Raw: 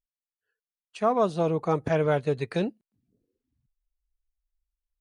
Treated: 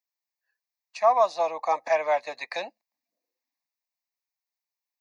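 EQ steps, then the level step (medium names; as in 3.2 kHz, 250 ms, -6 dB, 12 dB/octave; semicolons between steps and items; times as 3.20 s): high-pass 510 Hz 24 dB/octave; static phaser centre 2.1 kHz, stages 8; +7.5 dB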